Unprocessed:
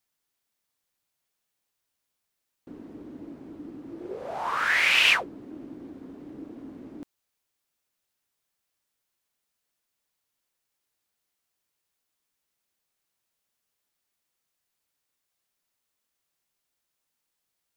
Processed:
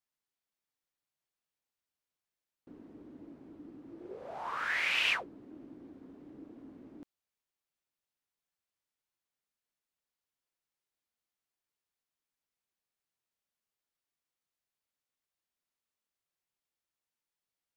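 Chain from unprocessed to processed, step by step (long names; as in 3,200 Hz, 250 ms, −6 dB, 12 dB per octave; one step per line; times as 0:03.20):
high-shelf EQ 6,200 Hz −6 dB
level −9 dB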